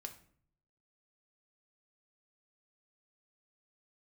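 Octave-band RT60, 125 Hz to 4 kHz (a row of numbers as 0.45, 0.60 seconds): 0.95, 0.80, 0.60, 0.50, 0.45, 0.40 seconds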